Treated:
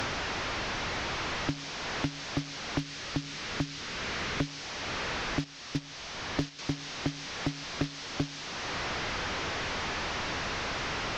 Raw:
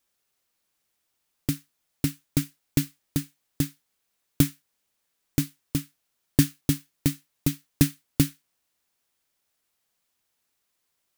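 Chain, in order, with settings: one-bit delta coder 32 kbps, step -30.5 dBFS; 2.80–4.47 s: dynamic bell 760 Hz, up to -8 dB, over -49 dBFS, Q 1.3; 5.44–6.59 s: gate -24 dBFS, range -8 dB; one-sided clip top -17.5 dBFS; three bands compressed up and down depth 100%; trim -3 dB

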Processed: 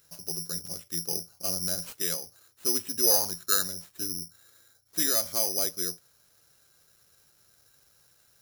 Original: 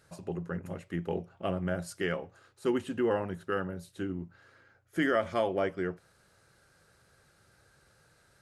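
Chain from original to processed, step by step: 3.02–3.71 s: peaking EQ 560 Hz -> 2 kHz +11.5 dB 0.73 oct; careless resampling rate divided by 8×, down none, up zero stuff; trim -7.5 dB

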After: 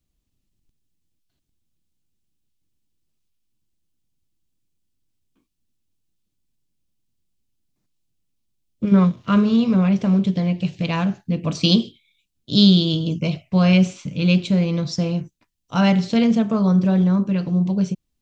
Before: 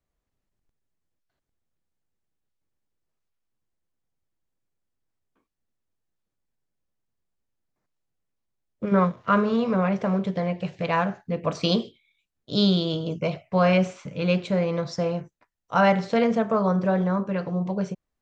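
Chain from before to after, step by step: high-order bell 930 Hz -12 dB 2.6 oct; trim +8 dB

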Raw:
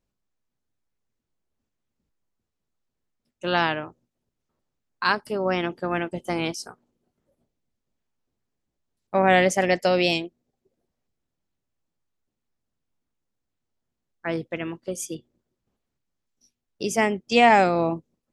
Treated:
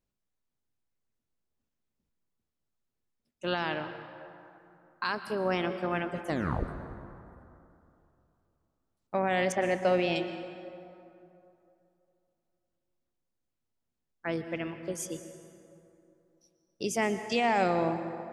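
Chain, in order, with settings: 9.52–10.16 s: low-pass 2.5 kHz 12 dB/octave; peak limiter -13.5 dBFS, peak gain reduction 8 dB; 6.27 s: tape stop 0.41 s; reverberation RT60 2.9 s, pre-delay 107 ms, DRR 9.5 dB; trim -5 dB

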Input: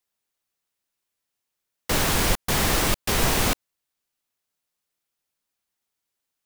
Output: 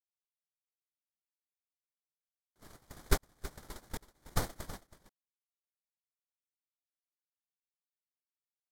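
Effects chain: local Wiener filter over 9 samples; gate -16 dBFS, range -59 dB; peaking EQ 3.6 kHz -14 dB 0.31 oct; delay 240 ms -15 dB; speed mistake 45 rpm record played at 33 rpm; trim +7.5 dB

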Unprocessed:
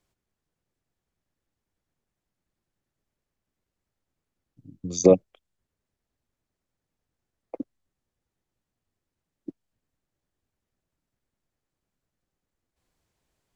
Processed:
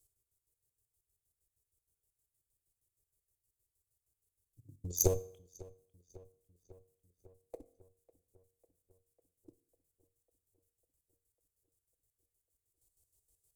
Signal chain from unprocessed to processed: one-sided clip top -26.5 dBFS, bottom -5.5 dBFS; square tremolo 6.4 Hz, depth 65%, duty 45%; FFT filter 110 Hz 0 dB, 210 Hz -21 dB, 400 Hz -5 dB, 1.5 kHz -23 dB, 5.6 kHz -1 dB, 8.7 kHz +13 dB; filtered feedback delay 549 ms, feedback 67%, low-pass 3.7 kHz, level -21 dB; on a send at -14 dB: reverberation RT60 0.60 s, pre-delay 3 ms

